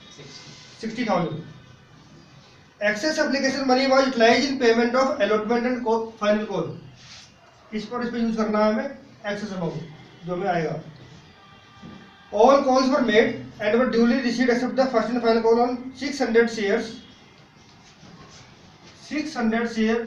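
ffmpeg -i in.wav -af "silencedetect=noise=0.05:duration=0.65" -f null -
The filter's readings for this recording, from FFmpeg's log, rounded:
silence_start: 0.00
silence_end: 0.83 | silence_duration: 0.83
silence_start: 1.39
silence_end: 2.81 | silence_duration: 1.42
silence_start: 6.71
silence_end: 7.74 | silence_duration: 1.03
silence_start: 10.77
silence_end: 12.34 | silence_duration: 1.56
silence_start: 16.88
silence_end: 19.11 | silence_duration: 2.23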